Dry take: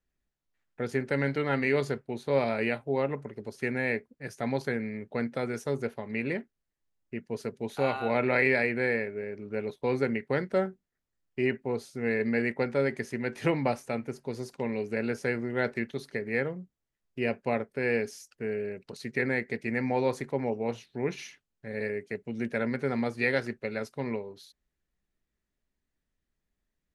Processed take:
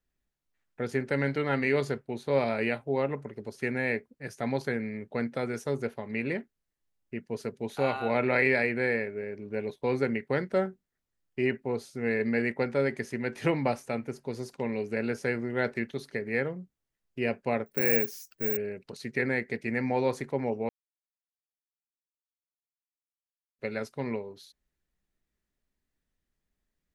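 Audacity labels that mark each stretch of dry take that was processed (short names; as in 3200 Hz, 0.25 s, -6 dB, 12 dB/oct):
9.340000	9.810000	Butterworth band-stop 1300 Hz, Q 6.3
17.660000	18.570000	careless resampling rate divided by 2×, down none, up zero stuff
20.690000	23.590000	mute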